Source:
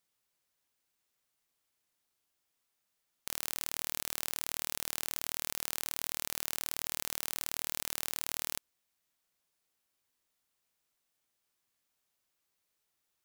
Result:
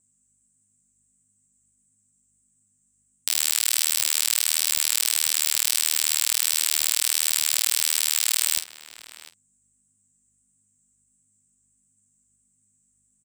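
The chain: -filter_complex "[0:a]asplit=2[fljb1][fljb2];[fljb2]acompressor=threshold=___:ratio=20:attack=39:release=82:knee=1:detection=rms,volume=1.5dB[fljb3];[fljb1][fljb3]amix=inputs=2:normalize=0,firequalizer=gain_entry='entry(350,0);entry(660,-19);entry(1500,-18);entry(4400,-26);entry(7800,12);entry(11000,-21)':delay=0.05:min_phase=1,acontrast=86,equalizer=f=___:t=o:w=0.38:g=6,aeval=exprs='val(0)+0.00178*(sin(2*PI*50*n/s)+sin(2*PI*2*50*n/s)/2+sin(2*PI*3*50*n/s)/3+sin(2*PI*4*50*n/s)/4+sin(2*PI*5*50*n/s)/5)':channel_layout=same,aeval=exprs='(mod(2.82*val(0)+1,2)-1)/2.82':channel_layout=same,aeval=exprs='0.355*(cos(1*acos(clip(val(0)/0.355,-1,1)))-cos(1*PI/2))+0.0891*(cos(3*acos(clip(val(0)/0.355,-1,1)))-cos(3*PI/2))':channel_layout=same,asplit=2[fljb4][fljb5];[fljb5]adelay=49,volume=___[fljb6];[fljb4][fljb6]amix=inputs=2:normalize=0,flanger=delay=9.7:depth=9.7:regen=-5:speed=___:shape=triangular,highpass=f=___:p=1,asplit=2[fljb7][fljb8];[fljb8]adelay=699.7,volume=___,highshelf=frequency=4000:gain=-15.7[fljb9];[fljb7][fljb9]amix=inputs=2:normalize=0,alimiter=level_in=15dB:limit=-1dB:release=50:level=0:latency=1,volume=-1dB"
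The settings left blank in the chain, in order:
-48dB, 9100, -14dB, 1.5, 1200, -15dB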